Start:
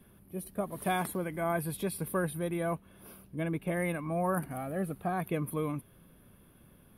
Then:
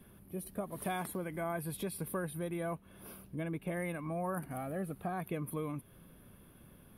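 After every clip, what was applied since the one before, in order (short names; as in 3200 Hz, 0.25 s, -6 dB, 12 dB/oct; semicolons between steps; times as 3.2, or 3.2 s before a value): compressor 2:1, threshold -40 dBFS, peak gain reduction 8 dB; gain +1 dB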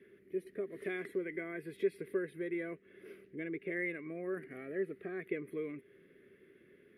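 double band-pass 880 Hz, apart 2.3 oct; gain +10.5 dB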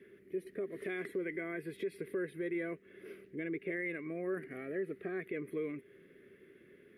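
limiter -31.5 dBFS, peak gain reduction 9.5 dB; gain +2.5 dB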